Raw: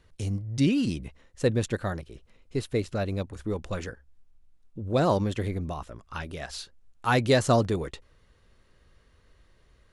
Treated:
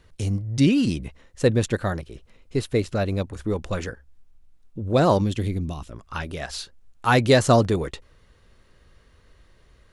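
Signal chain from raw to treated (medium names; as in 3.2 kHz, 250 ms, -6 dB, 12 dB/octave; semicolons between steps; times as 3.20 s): 5.21–5.93 s: high-order bell 940 Hz -8.5 dB 2.5 oct; trim +5 dB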